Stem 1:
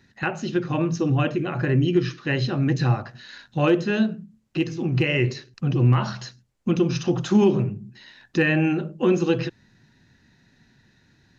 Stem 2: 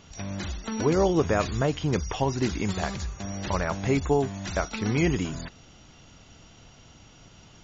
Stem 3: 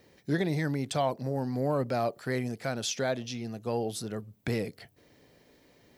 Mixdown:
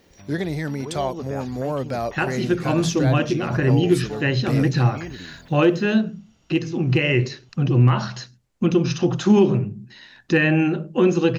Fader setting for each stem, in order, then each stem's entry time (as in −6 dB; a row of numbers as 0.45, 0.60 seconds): +2.5, −11.0, +3.0 decibels; 1.95, 0.00, 0.00 seconds